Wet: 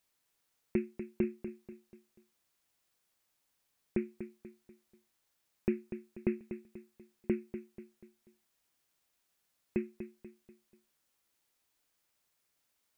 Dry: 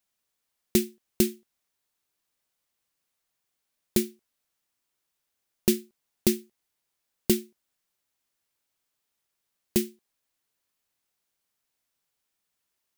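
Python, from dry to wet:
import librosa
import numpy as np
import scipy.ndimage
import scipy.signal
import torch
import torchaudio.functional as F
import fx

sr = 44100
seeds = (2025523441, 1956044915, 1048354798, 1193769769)

y = scipy.signal.sosfilt(scipy.signal.cheby1(8, 1.0, 2600.0, 'lowpass', fs=sr, output='sos'), x)
y = fx.quant_dither(y, sr, seeds[0], bits=12, dither='triangular')
y = fx.echo_feedback(y, sr, ms=243, feedback_pct=41, wet_db=-10.5)
y = y * 10.0 ** (-7.5 / 20.0)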